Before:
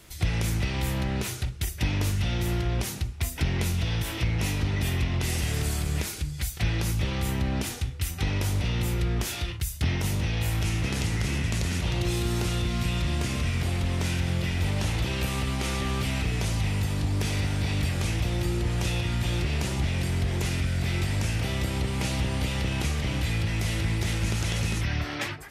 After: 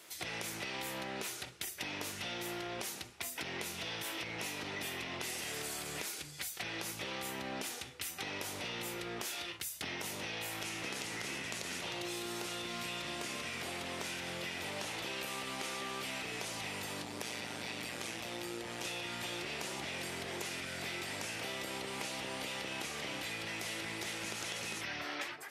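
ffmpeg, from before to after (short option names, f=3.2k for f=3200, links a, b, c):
-filter_complex "[0:a]asplit=3[a][b][c];[a]afade=t=out:st=17.02:d=0.02[d];[b]tremolo=f=120:d=0.621,afade=t=in:st=17.02:d=0.02,afade=t=out:st=18.84:d=0.02[e];[c]afade=t=in:st=18.84:d=0.02[f];[d][e][f]amix=inputs=3:normalize=0,highpass=390,acompressor=threshold=-35dB:ratio=6,volume=-2dB"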